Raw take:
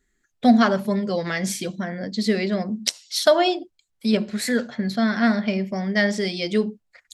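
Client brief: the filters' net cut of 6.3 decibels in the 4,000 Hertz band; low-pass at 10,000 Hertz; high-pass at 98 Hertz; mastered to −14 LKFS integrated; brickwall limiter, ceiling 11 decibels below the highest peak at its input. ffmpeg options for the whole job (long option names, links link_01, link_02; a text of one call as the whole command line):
ffmpeg -i in.wav -af "highpass=98,lowpass=10000,equalizer=frequency=4000:width_type=o:gain=-8,volume=12.5dB,alimiter=limit=-3dB:level=0:latency=1" out.wav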